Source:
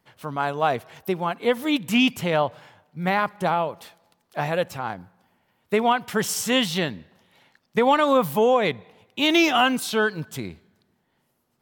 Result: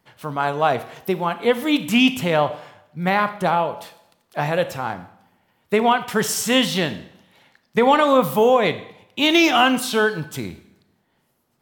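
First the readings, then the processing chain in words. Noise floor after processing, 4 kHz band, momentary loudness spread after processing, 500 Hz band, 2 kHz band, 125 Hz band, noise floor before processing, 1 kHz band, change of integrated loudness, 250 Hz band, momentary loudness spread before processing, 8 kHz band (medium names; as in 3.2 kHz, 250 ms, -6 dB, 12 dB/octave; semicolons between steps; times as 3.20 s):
-68 dBFS, +3.5 dB, 15 LU, +3.5 dB, +3.0 dB, +3.0 dB, -71 dBFS, +3.5 dB, +3.5 dB, +3.5 dB, 14 LU, +3.5 dB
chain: Schroeder reverb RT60 0.68 s, combs from 27 ms, DRR 11.5 dB; trim +3 dB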